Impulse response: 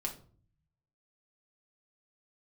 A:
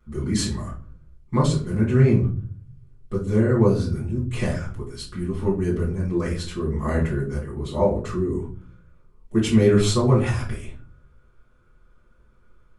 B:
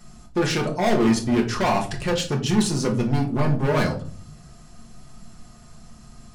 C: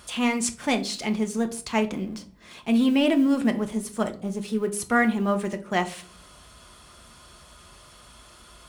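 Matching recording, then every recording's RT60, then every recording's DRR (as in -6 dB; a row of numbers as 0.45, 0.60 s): B; 0.45 s, 0.45 s, not exponential; -10.0, 0.0, 6.0 dB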